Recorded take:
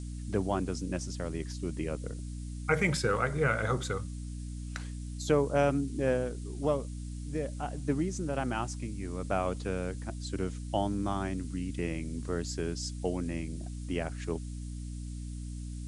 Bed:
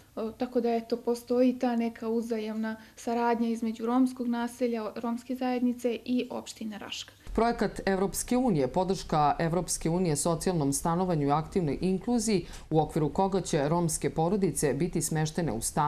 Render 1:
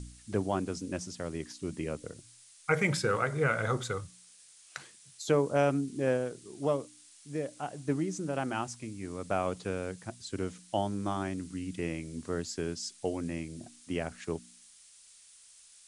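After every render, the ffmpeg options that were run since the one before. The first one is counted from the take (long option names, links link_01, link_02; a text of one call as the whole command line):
ffmpeg -i in.wav -af "bandreject=frequency=60:width_type=h:width=4,bandreject=frequency=120:width_type=h:width=4,bandreject=frequency=180:width_type=h:width=4,bandreject=frequency=240:width_type=h:width=4,bandreject=frequency=300:width_type=h:width=4" out.wav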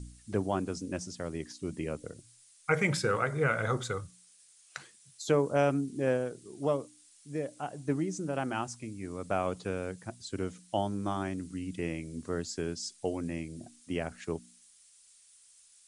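ffmpeg -i in.wav -af "afftdn=noise_reduction=6:noise_floor=-57" out.wav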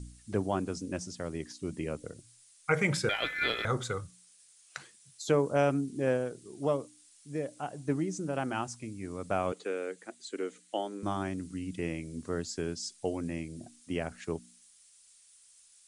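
ffmpeg -i in.wav -filter_complex "[0:a]asettb=1/sr,asplit=3[link_01][link_02][link_03];[link_01]atrim=end=3.094[link_04];[link_02]atrim=start=3.09:end=3.65,asetpts=PTS-STARTPTS,afade=type=in:duration=0.004:curve=qsin,afade=type=out:start_time=0.556:duration=0.004:curve=qsin,aeval=exprs='val(0)*sin(2*PI*1900*n/s)':channel_layout=same[link_05];[link_03]atrim=start=3.646[link_06];[link_04][link_05]acrossfade=duration=0.004:curve1=hsin:curve2=qsin[link_07];[link_07][link_06]acrossfade=duration=0.004:curve1=qsin:curve2=hsin,asettb=1/sr,asplit=3[link_08][link_09][link_10];[link_08]atrim=end=9.524[link_11];[link_09]atrim=start=9.52:end=11.03,asetpts=PTS-STARTPTS,afade=type=in:duration=0.004:curve=qsin,afade=type=out:start_time=1.506:duration=0.004:curve=qsin,highpass=frequency=280:width=0.5412,highpass=frequency=280:width=1.3066,equalizer=frequency=450:width_type=q:width=4:gain=4,equalizer=frequency=650:width_type=q:width=4:gain=-4,equalizer=frequency=960:width_type=q:width=4:gain=-6,equalizer=frequency=2000:width_type=q:width=4:gain=4,equalizer=frequency=5300:width_type=q:width=4:gain=-6,lowpass=frequency=9500:width=0.5412,lowpass=frequency=9500:width=1.3066[link_12];[link_10]atrim=start=11.026[link_13];[link_11][link_12]acrossfade=duration=0.004:curve1=hsin:curve2=qsin[link_14];[link_14][link_13]acrossfade=duration=0.004:curve1=qsin:curve2=hsin" out.wav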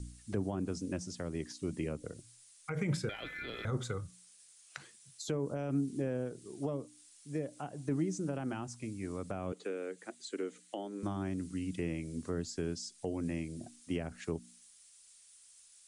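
ffmpeg -i in.wav -filter_complex "[0:a]alimiter=limit=-21.5dB:level=0:latency=1:release=40,acrossover=split=370[link_01][link_02];[link_02]acompressor=threshold=-41dB:ratio=6[link_03];[link_01][link_03]amix=inputs=2:normalize=0" out.wav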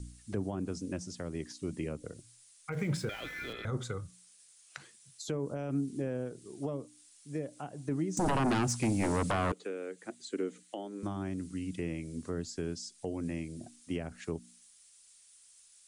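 ffmpeg -i in.wav -filter_complex "[0:a]asettb=1/sr,asplit=3[link_01][link_02][link_03];[link_01]atrim=end=2.724[link_04];[link_02]atrim=start=2.72:end=3.53,asetpts=PTS-STARTPTS,afade=type=in:duration=0.004:curve=qsin,afade=type=out:start_time=0.806:duration=0.004:curve=qsin,aeval=exprs='val(0)+0.5*0.00422*sgn(val(0))':channel_layout=same[link_05];[link_03]atrim=start=3.526[link_06];[link_04][link_05]acrossfade=duration=0.004:curve1=hsin:curve2=qsin[link_07];[link_07][link_06]acrossfade=duration=0.004:curve1=qsin:curve2=hsin,asettb=1/sr,asplit=3[link_08][link_09][link_10];[link_08]atrim=end=8.174[link_11];[link_09]atrim=start=8.17:end=9.52,asetpts=PTS-STARTPTS,afade=type=in:duration=0.004:curve=qsin,afade=type=out:start_time=1.346:duration=0.004:curve=qsin,aeval=exprs='0.0596*sin(PI/2*3.55*val(0)/0.0596)':channel_layout=same[link_12];[link_10]atrim=start=9.516[link_13];[link_11][link_12]acrossfade=duration=0.004:curve1=hsin:curve2=qsin[link_14];[link_14][link_13]acrossfade=duration=0.004:curve1=qsin:curve2=hsin,asettb=1/sr,asplit=3[link_15][link_16][link_17];[link_15]atrim=end=10.054[link_18];[link_16]atrim=start=10.05:end=10.63,asetpts=PTS-STARTPTS,afade=type=in:duration=0.004:curve=qsin,afade=type=out:start_time=0.576:duration=0.004:curve=qsin,lowshelf=frequency=250:gain=11[link_19];[link_17]atrim=start=10.626[link_20];[link_18][link_19]acrossfade=duration=0.004:curve1=hsin:curve2=qsin[link_21];[link_21][link_20]acrossfade=duration=0.004:curve1=qsin:curve2=hsin" out.wav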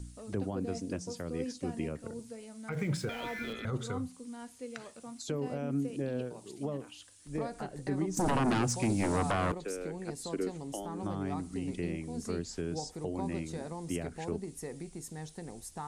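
ffmpeg -i in.wav -i bed.wav -filter_complex "[1:a]volume=-14.5dB[link_01];[0:a][link_01]amix=inputs=2:normalize=0" out.wav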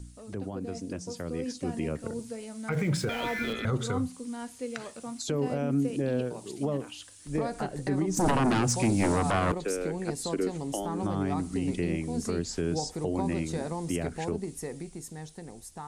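ffmpeg -i in.wav -af "alimiter=level_in=2dB:limit=-24dB:level=0:latency=1:release=74,volume=-2dB,dynaudnorm=framelen=170:gausssize=17:maxgain=7dB" out.wav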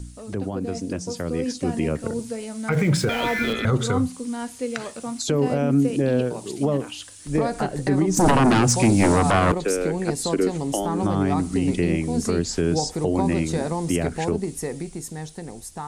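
ffmpeg -i in.wav -af "volume=8dB" out.wav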